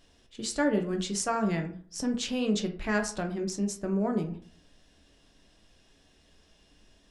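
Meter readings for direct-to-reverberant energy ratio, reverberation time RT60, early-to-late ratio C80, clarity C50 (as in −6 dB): 3.5 dB, 0.50 s, 15.5 dB, 11.0 dB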